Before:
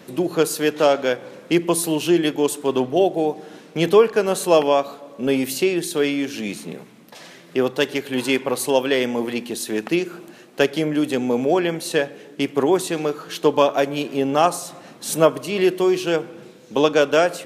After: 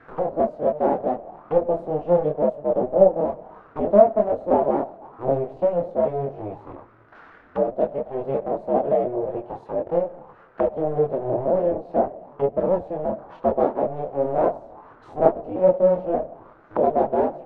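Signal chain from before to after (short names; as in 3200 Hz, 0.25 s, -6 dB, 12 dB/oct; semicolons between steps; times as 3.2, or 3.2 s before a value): cycle switcher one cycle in 2, inverted; chorus voices 6, 0.69 Hz, delay 24 ms, depth 4.8 ms; envelope low-pass 630–1600 Hz down, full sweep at -24 dBFS; gain -5 dB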